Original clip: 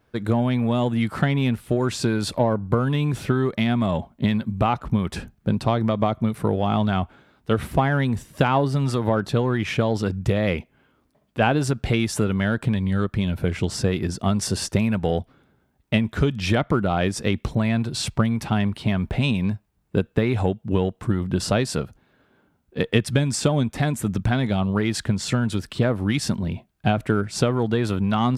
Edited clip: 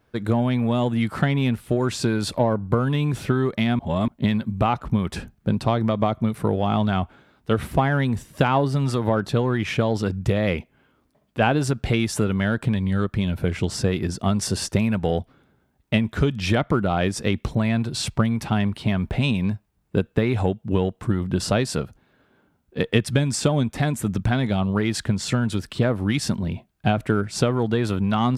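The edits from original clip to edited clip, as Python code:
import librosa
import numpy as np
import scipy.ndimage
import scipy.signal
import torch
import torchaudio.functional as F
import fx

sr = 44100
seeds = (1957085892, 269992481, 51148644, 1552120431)

y = fx.edit(x, sr, fx.reverse_span(start_s=3.79, length_s=0.29), tone=tone)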